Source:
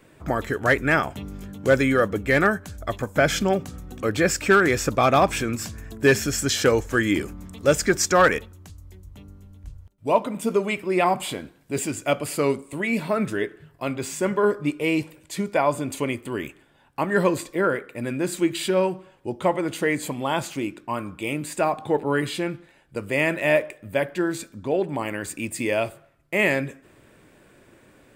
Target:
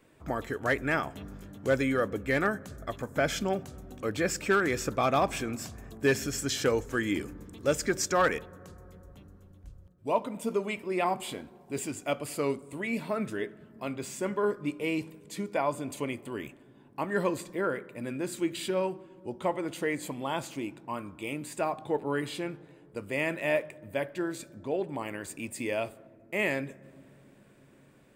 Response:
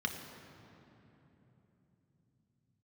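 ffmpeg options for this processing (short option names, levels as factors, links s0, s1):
-filter_complex "[0:a]asplit=2[s0][s1];[1:a]atrim=start_sample=2205,lowpass=1500[s2];[s1][s2]afir=irnorm=-1:irlink=0,volume=0.1[s3];[s0][s3]amix=inputs=2:normalize=0,volume=0.398"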